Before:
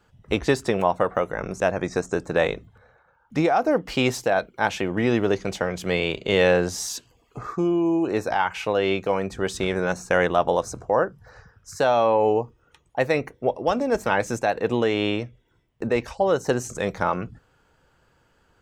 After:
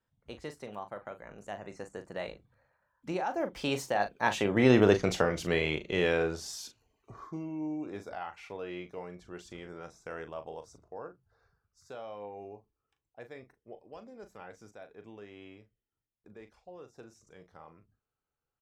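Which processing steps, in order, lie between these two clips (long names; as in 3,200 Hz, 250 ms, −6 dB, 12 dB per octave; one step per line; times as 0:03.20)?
source passing by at 0:04.89, 29 m/s, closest 12 metres
double-tracking delay 39 ms −10 dB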